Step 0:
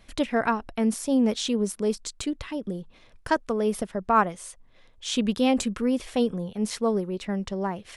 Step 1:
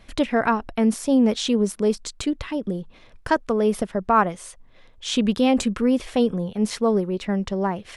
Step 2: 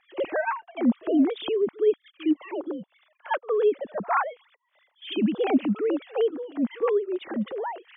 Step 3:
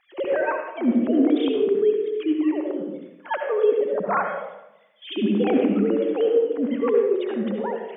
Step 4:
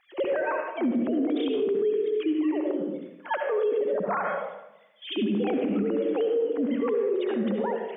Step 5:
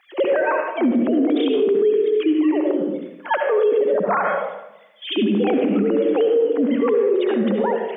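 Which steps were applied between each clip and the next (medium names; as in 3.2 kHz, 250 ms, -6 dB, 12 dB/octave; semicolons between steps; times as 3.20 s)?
treble shelf 5.4 kHz -6 dB; in parallel at -2 dB: peak limiter -17 dBFS, peak gain reduction 8 dB
formants replaced by sine waves; reverse echo 61 ms -21 dB; trim -4 dB
on a send at -5.5 dB: ten-band graphic EQ 125 Hz +8 dB, 250 Hz +4 dB, 500 Hz +10 dB, 1 kHz -5 dB, 2 kHz +5 dB + reverberation RT60 0.90 s, pre-delay 59 ms
peak limiter -19 dBFS, peak gain reduction 10 dB
high-pass 160 Hz 12 dB/octave; trim +8 dB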